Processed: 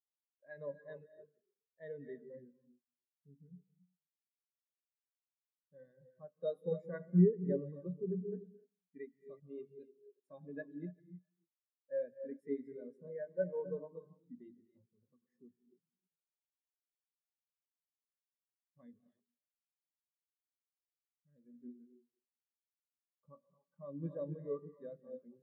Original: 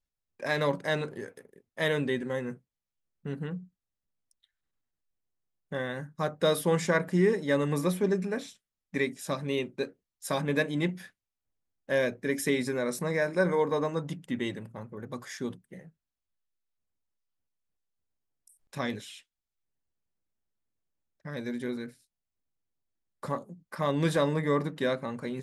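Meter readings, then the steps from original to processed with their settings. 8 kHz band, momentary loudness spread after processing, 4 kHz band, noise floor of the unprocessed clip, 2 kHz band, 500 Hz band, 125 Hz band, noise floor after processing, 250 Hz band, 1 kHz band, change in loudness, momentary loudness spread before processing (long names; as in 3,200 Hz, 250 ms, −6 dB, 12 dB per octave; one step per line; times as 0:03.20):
below −35 dB, 19 LU, below −30 dB, below −85 dBFS, −26.5 dB, −12.0 dB, −8.5 dB, below −85 dBFS, −9.5 dB, −28.5 dB, −9.5 dB, 16 LU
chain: delay that plays each chunk backwards 200 ms, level −10.5 dB
reverb whose tail is shaped and stops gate 310 ms rising, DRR 4.5 dB
every bin expanded away from the loudest bin 2.5 to 1
level −5.5 dB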